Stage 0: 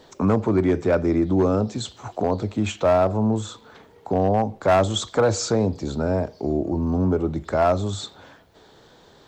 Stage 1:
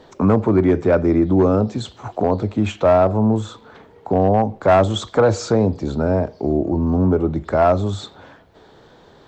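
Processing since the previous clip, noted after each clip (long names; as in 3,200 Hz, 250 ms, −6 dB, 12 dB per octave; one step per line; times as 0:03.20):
high-shelf EQ 4,200 Hz −12 dB
level +4.5 dB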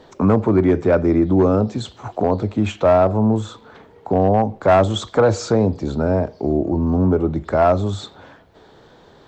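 no processing that can be heard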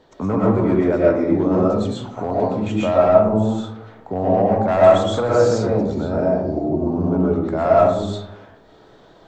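convolution reverb RT60 0.80 s, pre-delay 80 ms, DRR −6 dB
level −7.5 dB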